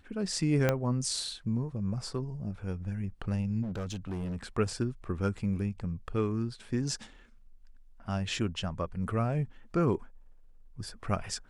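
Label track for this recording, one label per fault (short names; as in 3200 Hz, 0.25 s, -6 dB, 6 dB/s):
0.690000	0.690000	pop -12 dBFS
3.620000	4.370000	clipped -32 dBFS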